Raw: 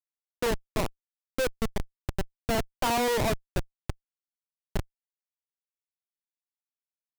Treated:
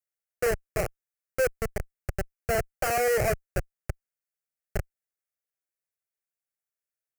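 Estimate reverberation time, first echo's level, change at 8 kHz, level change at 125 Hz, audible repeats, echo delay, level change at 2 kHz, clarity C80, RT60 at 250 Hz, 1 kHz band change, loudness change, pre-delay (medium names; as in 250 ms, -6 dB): no reverb, no echo, +1.5 dB, +0.5 dB, no echo, no echo, +3.0 dB, no reverb, no reverb, -1.0 dB, +1.0 dB, no reverb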